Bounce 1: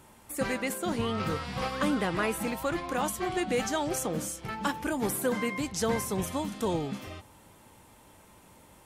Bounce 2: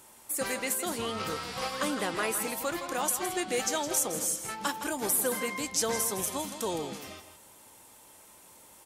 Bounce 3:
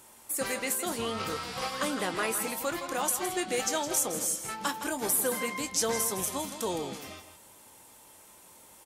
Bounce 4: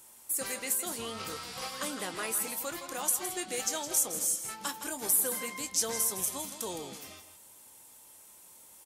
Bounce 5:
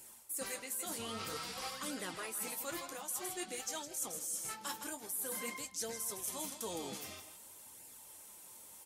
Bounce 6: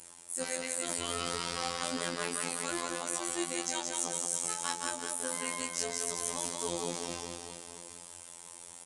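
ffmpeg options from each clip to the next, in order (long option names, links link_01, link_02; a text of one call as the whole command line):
ffmpeg -i in.wav -filter_complex "[0:a]bass=frequency=250:gain=-10,treble=frequency=4000:gain=9,asplit=2[link_01][link_02];[link_02]aecho=0:1:163:0.299[link_03];[link_01][link_03]amix=inputs=2:normalize=0,volume=-1.5dB" out.wav
ffmpeg -i in.wav -filter_complex "[0:a]asplit=2[link_01][link_02];[link_02]adelay=22,volume=-13dB[link_03];[link_01][link_03]amix=inputs=2:normalize=0" out.wav
ffmpeg -i in.wav -af "highshelf=frequency=4300:gain=9.5,volume=-7dB" out.wav
ffmpeg -i in.wav -af "areverse,acompressor=threshold=-38dB:ratio=6,areverse,flanger=delay=0.4:depth=9.7:regen=-39:speed=0.51:shape=sinusoidal,volume=4dB" out.wav
ffmpeg -i in.wav -af "aecho=1:1:180|378|595.8|835.4|1099:0.631|0.398|0.251|0.158|0.1,aresample=22050,aresample=44100,afftfilt=real='hypot(re,im)*cos(PI*b)':imag='0':win_size=2048:overlap=0.75,volume=8.5dB" out.wav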